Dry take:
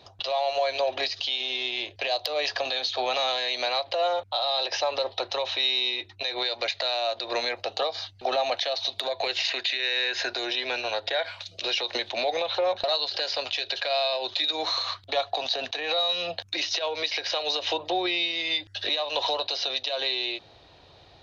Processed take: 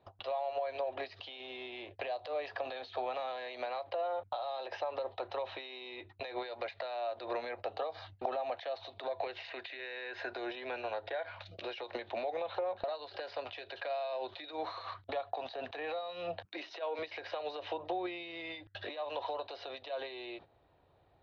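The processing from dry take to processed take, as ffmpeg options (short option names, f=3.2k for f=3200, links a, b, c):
-filter_complex "[0:a]asettb=1/sr,asplit=3[a][b][c];[a]atrim=end=16.454[d];[b]atrim=start=16.45:end=16.99,asetpts=PTS-STARTPTS,afade=t=in:d=0.004:c=qsin,afade=t=out:st=0.536:d=0.004:c=qsin,highpass=f=190:w=0.5412,highpass=f=190:w=1.3066[e];[c]atrim=start=16.986[f];[d][e]acrossfade=d=0.004:c1=hsin:c2=qsin[g];[g][f]acrossfade=d=0.004:c1=qsin:c2=hsin,acompressor=threshold=-35dB:ratio=10,agate=range=-16dB:threshold=-48dB:ratio=16:detection=peak,lowpass=1.6k,volume=3dB"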